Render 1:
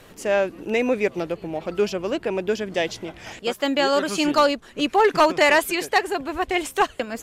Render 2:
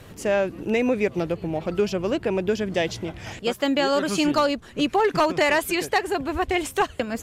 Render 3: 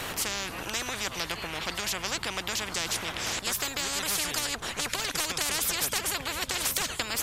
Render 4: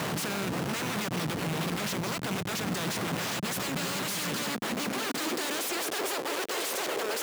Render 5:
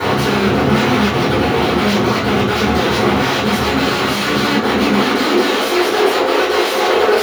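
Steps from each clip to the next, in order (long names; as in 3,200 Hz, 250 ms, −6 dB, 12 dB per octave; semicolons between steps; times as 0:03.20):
parametric band 92 Hz +11 dB 2 octaves; downward compressor 2.5 to 1, threshold −18 dBFS, peak gain reduction 5 dB
every bin compressed towards the loudest bin 10 to 1; level −2.5 dB
comparator with hysteresis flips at −35.5 dBFS; high-pass filter sweep 160 Hz → 420 Hz, 0:04.04–0:06.12; level −1 dB
convolution reverb RT60 0.40 s, pre-delay 3 ms, DRR −11 dB; level −5.5 dB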